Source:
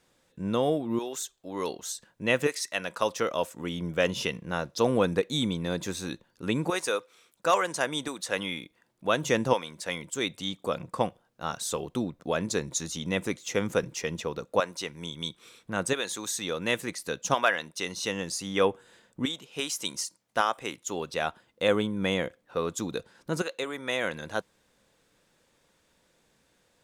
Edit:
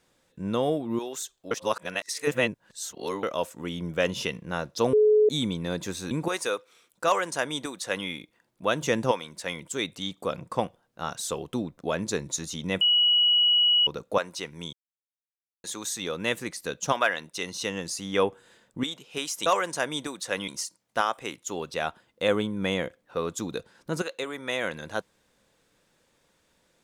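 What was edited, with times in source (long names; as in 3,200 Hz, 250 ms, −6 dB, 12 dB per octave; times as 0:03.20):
0:01.51–0:03.23: reverse
0:04.93–0:05.29: beep over 426 Hz −15.5 dBFS
0:06.11–0:06.53: remove
0:07.47–0:08.49: duplicate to 0:19.88
0:13.23–0:14.29: beep over 2,920 Hz −17.5 dBFS
0:15.15–0:16.06: silence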